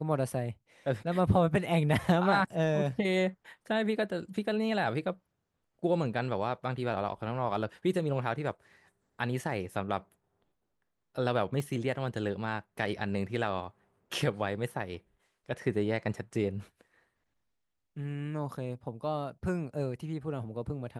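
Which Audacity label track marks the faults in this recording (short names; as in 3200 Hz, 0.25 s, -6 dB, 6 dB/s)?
11.600000	11.600000	gap 2.3 ms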